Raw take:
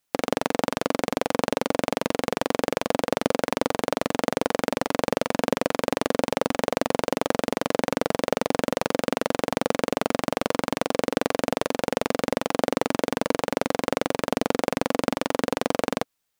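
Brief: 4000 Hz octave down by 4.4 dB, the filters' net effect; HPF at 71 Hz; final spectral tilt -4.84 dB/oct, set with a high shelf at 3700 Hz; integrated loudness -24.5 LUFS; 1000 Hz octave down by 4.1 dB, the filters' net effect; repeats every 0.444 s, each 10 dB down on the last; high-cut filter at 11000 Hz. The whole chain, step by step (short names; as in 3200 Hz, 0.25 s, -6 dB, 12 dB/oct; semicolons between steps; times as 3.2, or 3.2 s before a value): HPF 71 Hz; LPF 11000 Hz; bell 1000 Hz -5.5 dB; high shelf 3700 Hz +4.5 dB; bell 4000 Hz -8.5 dB; feedback echo 0.444 s, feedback 32%, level -10 dB; gain +2.5 dB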